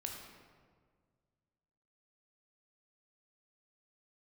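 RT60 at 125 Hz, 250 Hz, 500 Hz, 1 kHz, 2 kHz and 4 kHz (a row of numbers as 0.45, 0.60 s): 2.5, 2.1, 1.9, 1.6, 1.3, 1.0 s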